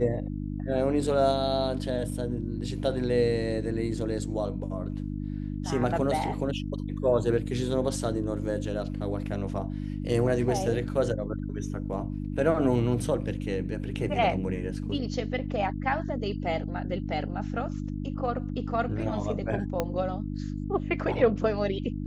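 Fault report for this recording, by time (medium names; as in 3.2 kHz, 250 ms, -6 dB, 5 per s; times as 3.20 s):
hum 50 Hz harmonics 6 -33 dBFS
19.80 s: pop -13 dBFS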